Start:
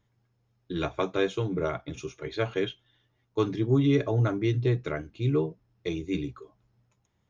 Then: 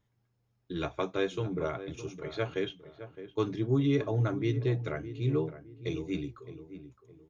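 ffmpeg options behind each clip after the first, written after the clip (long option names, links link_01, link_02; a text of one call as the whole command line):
ffmpeg -i in.wav -filter_complex "[0:a]asplit=2[link_01][link_02];[link_02]adelay=613,lowpass=frequency=1400:poles=1,volume=-12dB,asplit=2[link_03][link_04];[link_04]adelay=613,lowpass=frequency=1400:poles=1,volume=0.33,asplit=2[link_05][link_06];[link_06]adelay=613,lowpass=frequency=1400:poles=1,volume=0.33[link_07];[link_01][link_03][link_05][link_07]amix=inputs=4:normalize=0,volume=-4dB" out.wav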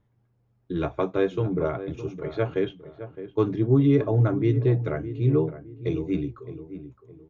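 ffmpeg -i in.wav -af "lowpass=frequency=1000:poles=1,volume=8dB" out.wav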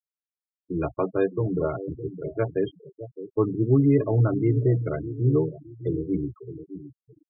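ffmpeg -i in.wav -af "afftfilt=real='re*gte(hypot(re,im),0.0398)':imag='im*gte(hypot(re,im),0.0398)':win_size=1024:overlap=0.75" out.wav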